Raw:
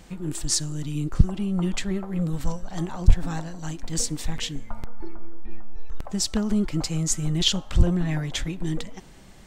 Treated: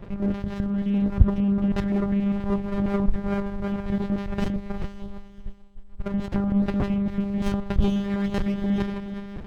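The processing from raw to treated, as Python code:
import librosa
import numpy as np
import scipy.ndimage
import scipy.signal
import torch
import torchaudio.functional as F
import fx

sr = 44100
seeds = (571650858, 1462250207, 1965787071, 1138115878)

p1 = scipy.signal.sosfilt(scipy.signal.butter(2, 1700.0, 'lowpass', fs=sr, output='sos'), x)
p2 = fx.over_compress(p1, sr, threshold_db=-27.0, ratio=-0.5)
p3 = p1 + F.gain(torch.from_numpy(p2), 0.0).numpy()
p4 = fx.echo_diffused(p3, sr, ms=460, feedback_pct=46, wet_db=-10)
p5 = fx.lpc_monotone(p4, sr, seeds[0], pitch_hz=200.0, order=8)
y = fx.running_max(p5, sr, window=33)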